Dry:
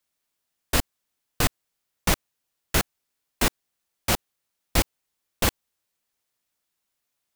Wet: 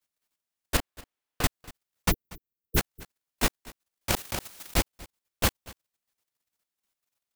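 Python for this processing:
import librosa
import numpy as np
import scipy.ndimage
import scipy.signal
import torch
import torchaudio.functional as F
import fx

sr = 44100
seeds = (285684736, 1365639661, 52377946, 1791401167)

y = fx.bass_treble(x, sr, bass_db=-7, treble_db=-8, at=(0.77, 1.44))
y = fx.level_steps(y, sr, step_db=10)
y = fx.brickwall_bandstop(y, sr, low_hz=470.0, high_hz=12000.0, at=(2.1, 2.76), fade=0.02)
y = y + 10.0 ** (-21.0 / 20.0) * np.pad(y, (int(238 * sr / 1000.0), 0))[:len(y)]
y = fx.env_flatten(y, sr, amount_pct=70, at=(4.09, 4.78))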